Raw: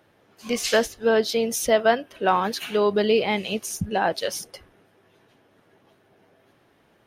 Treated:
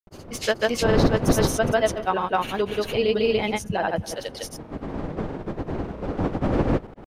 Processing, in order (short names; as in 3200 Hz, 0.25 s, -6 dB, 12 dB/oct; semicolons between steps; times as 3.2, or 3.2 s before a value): wind noise 420 Hz -26 dBFS; spring tank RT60 1.1 s, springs 60 ms, DRR 19 dB; grains 0.1 s, grains 20/s, spray 0.278 s, pitch spread up and down by 0 st; gain -1 dB